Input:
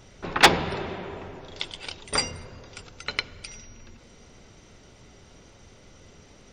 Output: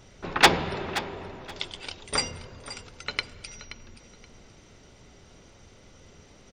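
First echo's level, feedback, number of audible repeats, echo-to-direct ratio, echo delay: -14.0 dB, 21%, 2, -14.0 dB, 526 ms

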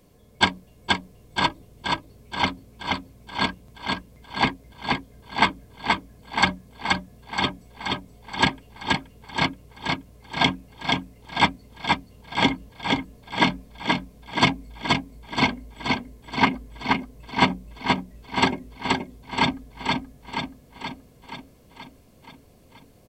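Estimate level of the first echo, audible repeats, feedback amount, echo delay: -3.0 dB, 7, 59%, 477 ms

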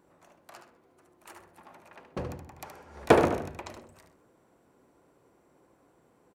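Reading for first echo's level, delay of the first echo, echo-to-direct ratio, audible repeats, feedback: -8.0 dB, 73 ms, -7.5 dB, 3, no regular repeats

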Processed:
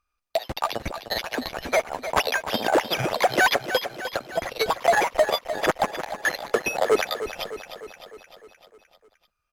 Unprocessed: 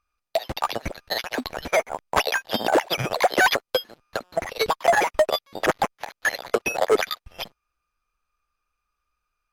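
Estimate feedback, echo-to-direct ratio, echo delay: 59%, -9.0 dB, 304 ms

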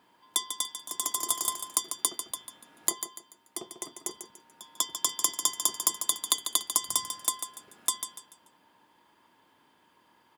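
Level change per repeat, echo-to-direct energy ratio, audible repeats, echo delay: -9.5 dB, -8.5 dB, 3, 145 ms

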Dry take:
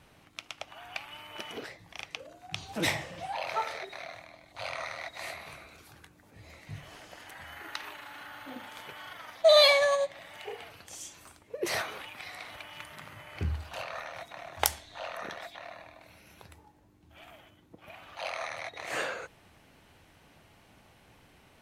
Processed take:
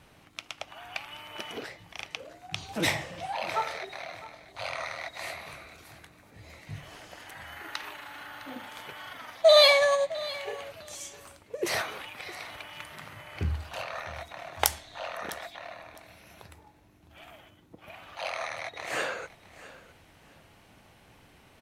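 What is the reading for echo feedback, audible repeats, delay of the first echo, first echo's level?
19%, 2, 658 ms, -18.0 dB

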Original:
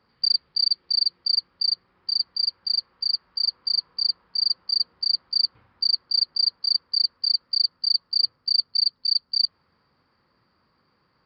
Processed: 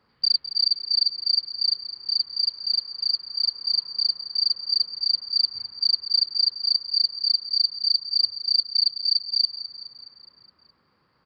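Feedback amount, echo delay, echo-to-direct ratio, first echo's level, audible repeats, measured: 57%, 209 ms, -11.5 dB, -13.0 dB, 5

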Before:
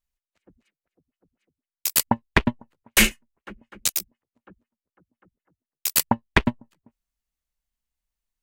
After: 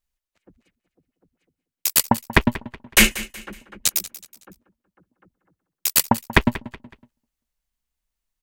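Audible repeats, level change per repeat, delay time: 3, -9.0 dB, 186 ms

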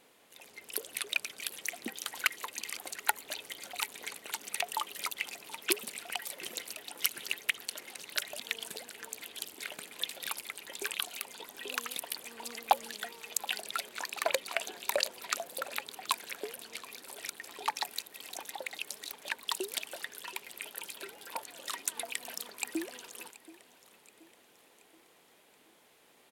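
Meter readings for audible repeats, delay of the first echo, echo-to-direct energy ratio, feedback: 3, 727 ms, -18.0 dB, 50%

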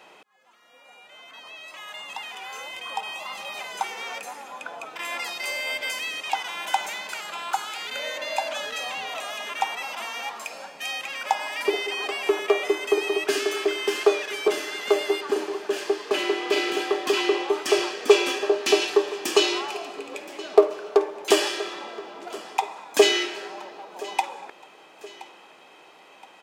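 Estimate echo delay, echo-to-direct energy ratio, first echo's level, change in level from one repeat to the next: 1022 ms, -18.0 dB, -19.0 dB, -7.0 dB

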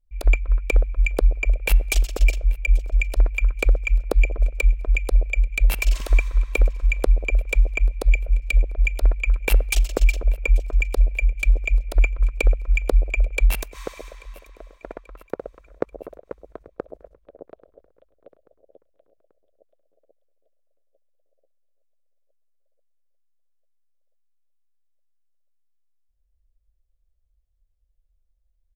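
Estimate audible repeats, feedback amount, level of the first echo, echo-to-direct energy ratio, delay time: 2, 50%, -23.0 dB, -22.0 dB, 836 ms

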